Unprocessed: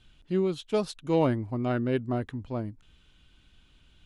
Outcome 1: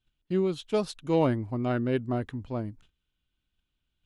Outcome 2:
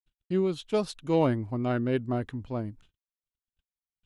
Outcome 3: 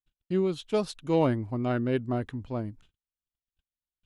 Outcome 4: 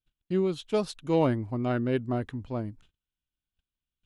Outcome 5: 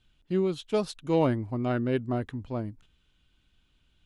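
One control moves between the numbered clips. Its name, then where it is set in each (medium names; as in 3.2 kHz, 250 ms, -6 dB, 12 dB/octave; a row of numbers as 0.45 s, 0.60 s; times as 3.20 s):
gate, range: -21 dB, -58 dB, -45 dB, -33 dB, -8 dB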